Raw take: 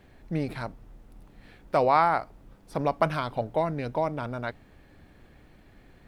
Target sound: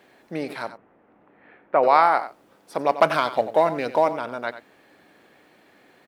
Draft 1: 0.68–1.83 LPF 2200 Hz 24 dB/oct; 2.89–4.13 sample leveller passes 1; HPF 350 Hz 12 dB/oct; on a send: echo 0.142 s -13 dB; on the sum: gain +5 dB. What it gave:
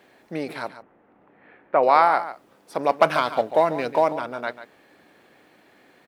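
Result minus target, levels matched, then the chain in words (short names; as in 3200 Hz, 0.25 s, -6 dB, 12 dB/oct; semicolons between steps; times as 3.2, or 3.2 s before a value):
echo 50 ms late
0.68–1.83 LPF 2200 Hz 24 dB/oct; 2.89–4.13 sample leveller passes 1; HPF 350 Hz 12 dB/oct; on a send: echo 92 ms -13 dB; on the sum: gain +5 dB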